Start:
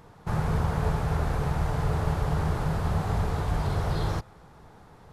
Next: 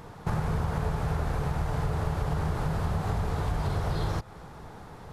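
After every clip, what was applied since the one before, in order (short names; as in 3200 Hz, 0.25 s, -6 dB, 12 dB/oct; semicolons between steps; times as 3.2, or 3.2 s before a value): compressor 4:1, threshold -33 dBFS, peak gain reduction 10.5 dB; gain +6.5 dB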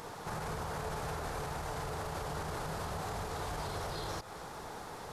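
tone controls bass -11 dB, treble +8 dB; limiter -33 dBFS, peak gain reduction 11 dB; high shelf 9300 Hz -3.5 dB; gain +3 dB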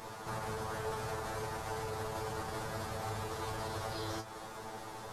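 resonator 110 Hz, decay 0.17 s, harmonics all, mix 100%; gain +7 dB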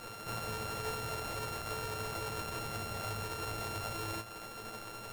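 sample sorter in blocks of 32 samples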